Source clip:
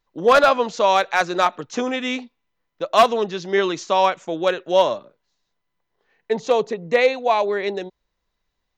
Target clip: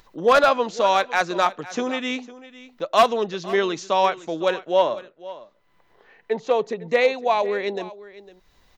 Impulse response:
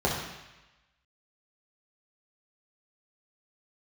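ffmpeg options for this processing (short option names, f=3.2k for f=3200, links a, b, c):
-filter_complex "[0:a]acompressor=mode=upward:threshold=-37dB:ratio=2.5,asettb=1/sr,asplit=3[a][b][c];[a]atrim=end=4.664[d];[b]atrim=start=4.66:end=6.65,asetpts=PTS-STARTPTS,afade=t=in:d=0.004:c=qsin,afade=t=out:st=1.986:d=0.004:c=qsin,bass=f=250:g=-4,treble=f=4k:g=-9[e];[c]atrim=start=6.646[f];[d][e]acrossfade=d=0.004:c1=hsin:c2=qsin[g];[g][f]acrossfade=d=0.004:c1=qsin:c2=hsin,aecho=1:1:504:0.133,volume=-2dB"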